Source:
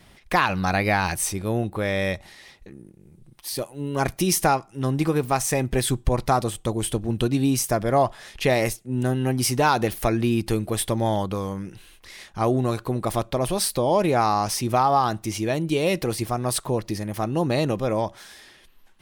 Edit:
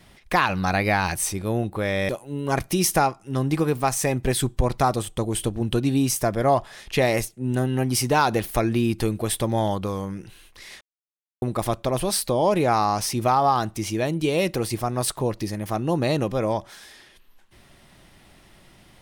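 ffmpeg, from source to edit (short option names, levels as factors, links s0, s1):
-filter_complex "[0:a]asplit=4[s0][s1][s2][s3];[s0]atrim=end=2.092[s4];[s1]atrim=start=3.568:end=12.29,asetpts=PTS-STARTPTS,afade=t=out:st=8.718:d=0.004:c=hsin[s5];[s2]atrim=start=12.29:end=12.9,asetpts=PTS-STARTPTS,volume=0[s6];[s3]atrim=start=12.9,asetpts=PTS-STARTPTS,afade=t=in:d=0.004:c=hsin[s7];[s5][s6][s7]concat=n=3:v=0:a=1[s8];[s4][s8]acrossfade=d=0.004:c1=hsin:c2=hsin"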